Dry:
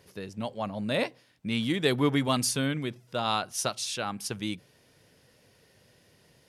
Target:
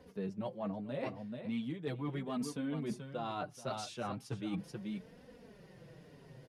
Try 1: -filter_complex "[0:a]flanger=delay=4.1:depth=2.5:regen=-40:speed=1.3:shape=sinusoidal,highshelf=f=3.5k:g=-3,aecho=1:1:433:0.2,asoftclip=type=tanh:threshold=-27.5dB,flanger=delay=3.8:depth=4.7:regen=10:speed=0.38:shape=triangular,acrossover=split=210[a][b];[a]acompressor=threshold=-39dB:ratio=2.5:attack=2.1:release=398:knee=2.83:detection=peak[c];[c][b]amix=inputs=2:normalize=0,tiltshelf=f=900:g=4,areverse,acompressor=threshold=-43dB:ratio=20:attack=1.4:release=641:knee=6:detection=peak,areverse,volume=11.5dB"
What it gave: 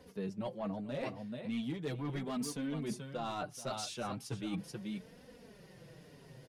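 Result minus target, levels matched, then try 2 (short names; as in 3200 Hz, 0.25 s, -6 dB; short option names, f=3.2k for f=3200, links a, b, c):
soft clip: distortion +17 dB; 8000 Hz band +5.5 dB
-filter_complex "[0:a]flanger=delay=4.1:depth=2.5:regen=-40:speed=1.3:shape=sinusoidal,highshelf=f=3.5k:g=-10.5,aecho=1:1:433:0.2,asoftclip=type=tanh:threshold=-16dB,flanger=delay=3.8:depth=4.7:regen=10:speed=0.38:shape=triangular,acrossover=split=210[a][b];[a]acompressor=threshold=-39dB:ratio=2.5:attack=2.1:release=398:knee=2.83:detection=peak[c];[c][b]amix=inputs=2:normalize=0,tiltshelf=f=900:g=4,areverse,acompressor=threshold=-43dB:ratio=20:attack=1.4:release=641:knee=6:detection=peak,areverse,volume=11.5dB"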